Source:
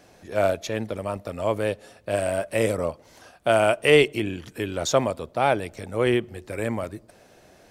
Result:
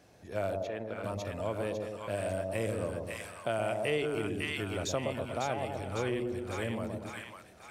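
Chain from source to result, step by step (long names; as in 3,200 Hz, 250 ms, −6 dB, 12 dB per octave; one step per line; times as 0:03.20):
high-pass filter 65 Hz
low-shelf EQ 100 Hz +11 dB
echo with a time of its own for lows and highs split 950 Hz, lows 118 ms, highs 552 ms, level −4 dB
downward compressor 2.5 to 1, threshold −23 dBFS, peak gain reduction 9 dB
0:00.63–0:01.04: bass and treble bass −11 dB, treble −13 dB
level −8 dB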